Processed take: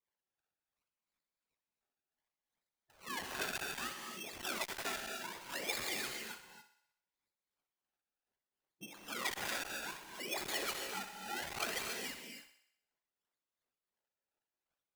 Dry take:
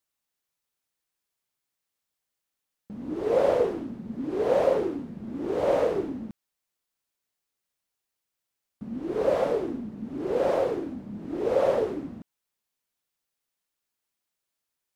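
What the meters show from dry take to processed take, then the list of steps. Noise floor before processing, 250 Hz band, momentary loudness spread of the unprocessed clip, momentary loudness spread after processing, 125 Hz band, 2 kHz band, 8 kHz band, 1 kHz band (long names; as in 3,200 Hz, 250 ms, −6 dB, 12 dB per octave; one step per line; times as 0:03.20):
−85 dBFS, −20.0 dB, 15 LU, 12 LU, −17.5 dB, +3.0 dB, can't be measured, −10.0 dB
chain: high-pass filter 150 Hz 12 dB per octave
LFO wah 2.8 Hz 270–2,400 Hz, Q 16
high-shelf EQ 4,100 Hz +12 dB
in parallel at 0 dB: compressor whose output falls as the input rises −48 dBFS
on the sum: sample-and-hold swept by an LFO 29×, swing 100% 0.65 Hz
gate on every frequency bin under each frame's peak −10 dB weak
on a send: feedback echo with a high-pass in the loop 63 ms, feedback 57%, high-pass 340 Hz, level −11 dB
on the sum: reverb whose tail is shaped and stops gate 310 ms rising, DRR 4.5 dB
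saturating transformer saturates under 2,800 Hz
level +6.5 dB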